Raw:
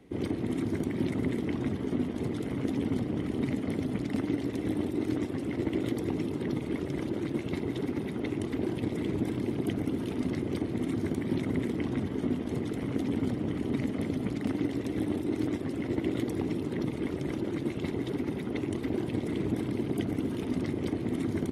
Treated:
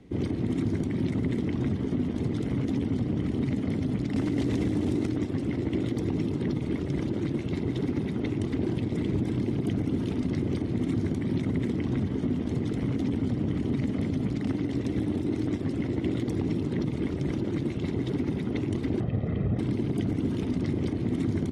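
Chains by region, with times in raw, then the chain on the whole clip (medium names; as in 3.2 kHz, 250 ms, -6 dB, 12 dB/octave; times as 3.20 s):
4.16–5.07 s: CVSD coder 64 kbps + level flattener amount 100%
19.00–19.59 s: low-pass 1.9 kHz + comb 1.6 ms
whole clip: low-pass 6.6 kHz 12 dB/octave; tone controls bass +8 dB, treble +5 dB; peak limiter -18.5 dBFS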